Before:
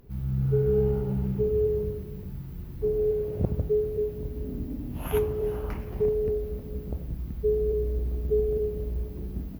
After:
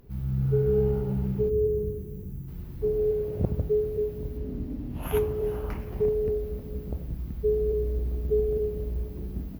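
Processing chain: 1.49–2.48 s: time-frequency box 510–5700 Hz -10 dB; 4.37–5.03 s: treble shelf 7.9 kHz -9 dB

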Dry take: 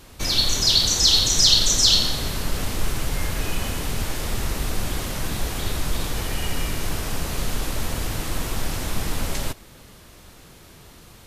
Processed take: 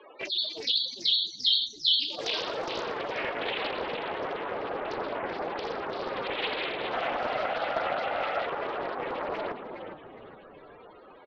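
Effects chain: 6.92–8.46 s: comb 1.5 ms, depth 86%; loudest bins only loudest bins 32; mistuned SSB +53 Hz 380–3200 Hz; frequency-shifting echo 413 ms, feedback 39%, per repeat -100 Hz, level -8 dB; loudspeaker Doppler distortion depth 0.42 ms; trim +5.5 dB

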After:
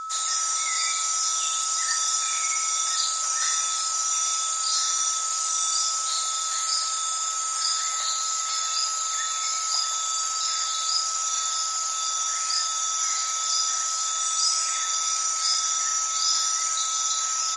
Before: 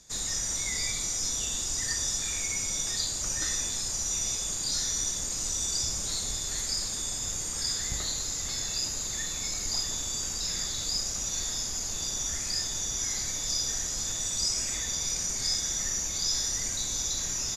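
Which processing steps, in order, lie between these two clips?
high-pass 700 Hz 24 dB/octave; whistle 1.3 kHz -36 dBFS; trim +5.5 dB; MP3 48 kbps 48 kHz

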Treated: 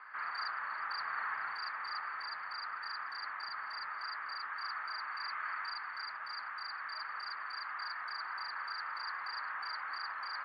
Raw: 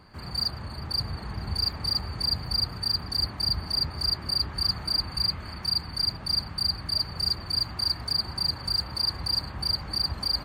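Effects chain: gain riding within 5 dB 0.5 s; Butterworth band-pass 1.5 kHz, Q 1.8; trim +7.5 dB

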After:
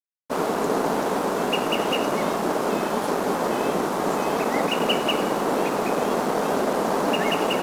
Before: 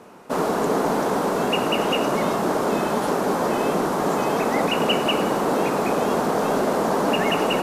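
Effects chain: high-pass 150 Hz; crossover distortion -34.5 dBFS

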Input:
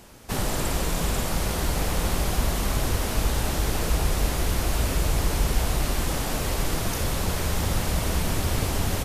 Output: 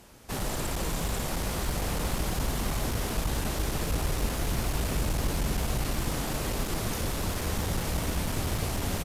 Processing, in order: one-sided clip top -22 dBFS; frequency-shifting echo 490 ms, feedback 64%, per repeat +87 Hz, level -11 dB; trim -4.5 dB

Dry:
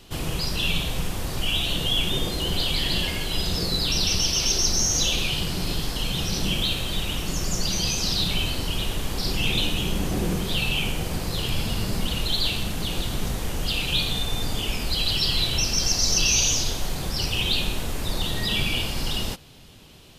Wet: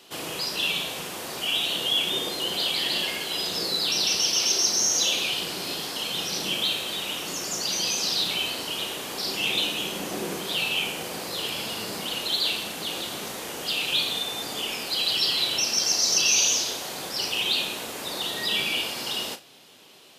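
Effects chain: high-pass 350 Hz 12 dB/octave; flutter echo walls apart 6.2 m, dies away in 0.2 s

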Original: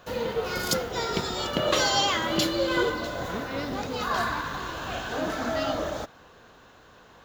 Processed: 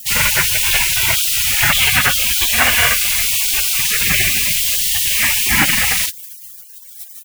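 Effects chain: mistuned SSB -180 Hz 460–2300 Hz; in parallel at -2 dB: compression 8:1, threshold -39 dBFS, peak gain reduction 17 dB; on the sum: bit crusher 8-bit; early reflections 40 ms -4.5 dB, 71 ms -17 dB; spectral gate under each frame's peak -30 dB weak; loudness maximiser +36 dB; trim -1 dB

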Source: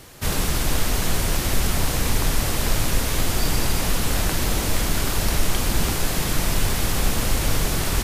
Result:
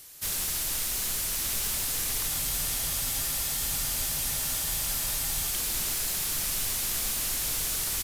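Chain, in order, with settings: pre-emphasis filter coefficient 0.9; on a send: delay 1169 ms -7.5 dB; on the sum: spectral freeze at 2.30 s, 3.21 s; slew-rate limiter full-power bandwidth 400 Hz

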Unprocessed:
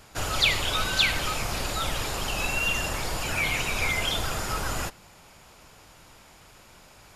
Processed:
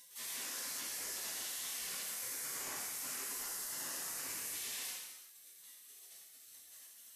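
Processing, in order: spectral gate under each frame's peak -25 dB weak; 2.02–4.54 s: peaking EQ 3.5 kHz -11 dB 0.8 oct; peak limiter -45 dBFS, peak gain reduction 20.5 dB; gated-style reverb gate 420 ms falling, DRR -7 dB; trim +4.5 dB

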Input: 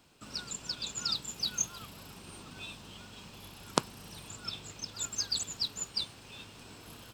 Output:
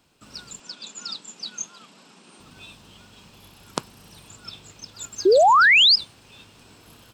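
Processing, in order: 0.60–2.40 s: Chebyshev band-pass 200–8000 Hz, order 3; 5.25–5.96 s: painted sound rise 350–5300 Hz -14 dBFS

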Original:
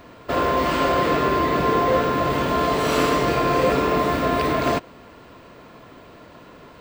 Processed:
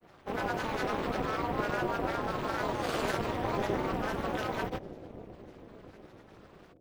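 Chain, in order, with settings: granulator, pitch spread up and down by 7 st; bucket-brigade echo 566 ms, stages 2048, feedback 62%, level -12.5 dB; AM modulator 220 Hz, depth 85%; trim -7.5 dB

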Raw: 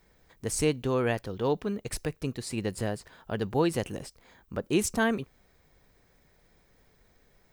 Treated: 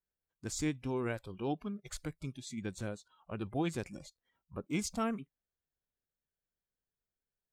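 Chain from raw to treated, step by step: spectral noise reduction 25 dB; formant shift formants -3 st; trim -8 dB

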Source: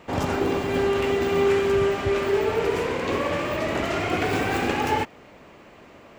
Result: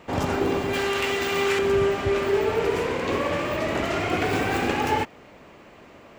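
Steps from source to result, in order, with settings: 0.73–1.59 s: tilt shelf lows -7 dB, about 900 Hz

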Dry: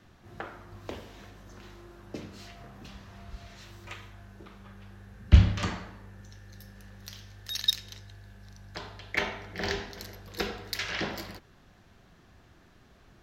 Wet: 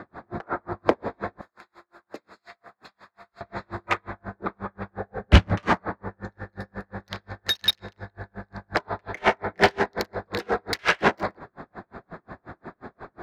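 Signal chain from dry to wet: local Wiener filter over 15 samples; 1.41–3.41 s: pre-emphasis filter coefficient 0.97; 4.97–5.32 s: time-frequency box 400–860 Hz +8 dB; in parallel at -1 dB: compression, threshold -46 dBFS, peak gain reduction 32 dB; on the sum: overdrive pedal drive 29 dB, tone 1.4 kHz, clips at -2.5 dBFS; logarithmic tremolo 5.6 Hz, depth 40 dB; trim +4 dB

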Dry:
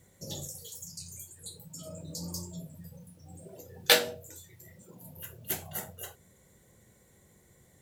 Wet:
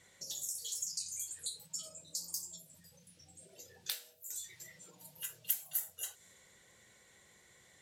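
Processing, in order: 2.99–3.71 s: peaking EQ 960 Hz -8 dB 1.1 oct; 4.55–5.74 s: comb 6.5 ms, depth 67%; level-controlled noise filter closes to 2.7 kHz, open at -34 dBFS; compression 16:1, threshold -51 dBFS, peak gain reduction 35 dB; pre-emphasis filter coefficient 0.97; trim +18 dB

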